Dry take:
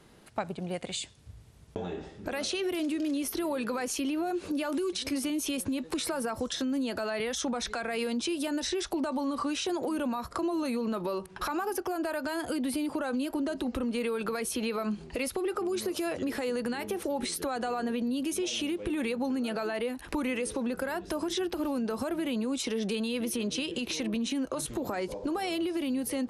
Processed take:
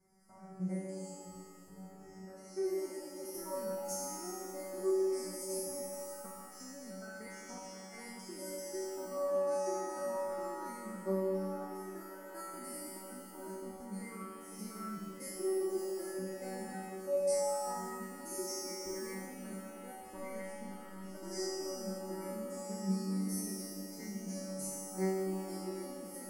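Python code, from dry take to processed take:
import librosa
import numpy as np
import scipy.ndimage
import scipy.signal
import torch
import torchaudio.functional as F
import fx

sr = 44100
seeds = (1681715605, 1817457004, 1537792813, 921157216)

y = fx.spec_steps(x, sr, hold_ms=100)
y = fx.bass_treble(y, sr, bass_db=7, treble_db=7)
y = fx.level_steps(y, sr, step_db=16)
y = scipy.signal.sosfilt(scipy.signal.ellip(3, 1.0, 40, [2100.0, 4800.0], 'bandstop', fs=sr, output='sos'), y)
y = fx.comb_fb(y, sr, f0_hz=190.0, decay_s=1.1, harmonics='all', damping=0.0, mix_pct=100)
y = fx.rev_shimmer(y, sr, seeds[0], rt60_s=3.0, semitones=7, shimmer_db=-8, drr_db=3.0)
y = y * 10.0 ** (14.0 / 20.0)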